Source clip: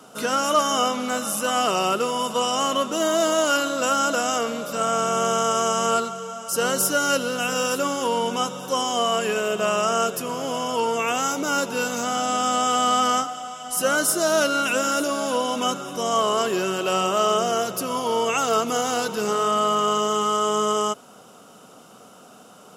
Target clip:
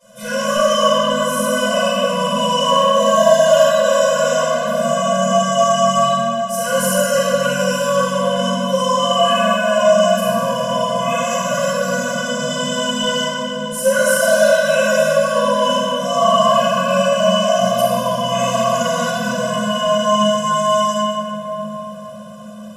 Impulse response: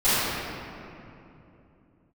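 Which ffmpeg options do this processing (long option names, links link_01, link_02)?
-filter_complex "[1:a]atrim=start_sample=2205,asetrate=29988,aresample=44100[link_01];[0:a][link_01]afir=irnorm=-1:irlink=0,afftfilt=real='re*eq(mod(floor(b*sr/1024/240),2),0)':imag='im*eq(mod(floor(b*sr/1024/240),2),0)':win_size=1024:overlap=0.75,volume=-12dB"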